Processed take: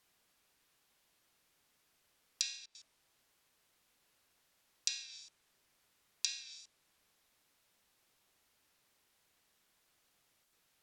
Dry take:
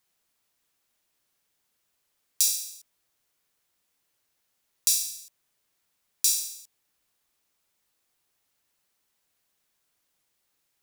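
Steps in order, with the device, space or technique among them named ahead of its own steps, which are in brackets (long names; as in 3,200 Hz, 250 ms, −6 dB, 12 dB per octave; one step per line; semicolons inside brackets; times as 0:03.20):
low-pass filter 5,200 Hz 12 dB per octave
worn cassette (low-pass filter 7,100 Hz 12 dB per octave; tape wow and flutter; tape dropouts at 0:02.66/0:10.44, 86 ms −18 dB; white noise bed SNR 33 dB)
treble cut that deepens with the level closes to 2,600 Hz, closed at −32.5 dBFS
level +2 dB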